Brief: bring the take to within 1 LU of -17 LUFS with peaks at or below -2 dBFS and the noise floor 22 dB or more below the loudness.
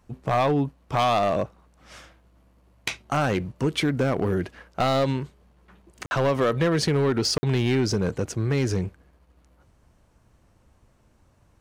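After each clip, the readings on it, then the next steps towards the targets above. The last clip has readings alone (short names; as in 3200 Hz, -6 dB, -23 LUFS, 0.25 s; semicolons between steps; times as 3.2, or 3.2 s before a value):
clipped 1.3%; flat tops at -16.0 dBFS; dropouts 2; longest dropout 50 ms; loudness -24.5 LUFS; peak -16.0 dBFS; loudness target -17.0 LUFS
-> clip repair -16 dBFS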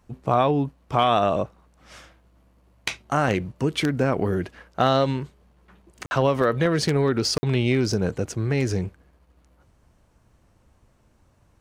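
clipped 0.0%; dropouts 2; longest dropout 50 ms
-> interpolate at 6.06/7.38, 50 ms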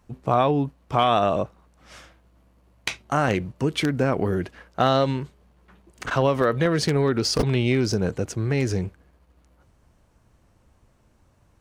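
dropouts 0; loudness -23.5 LUFS; peak -7.0 dBFS; loudness target -17.0 LUFS
-> gain +6.5 dB; limiter -2 dBFS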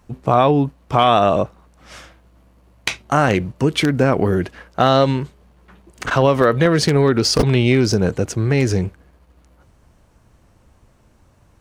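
loudness -17.0 LUFS; peak -2.0 dBFS; noise floor -55 dBFS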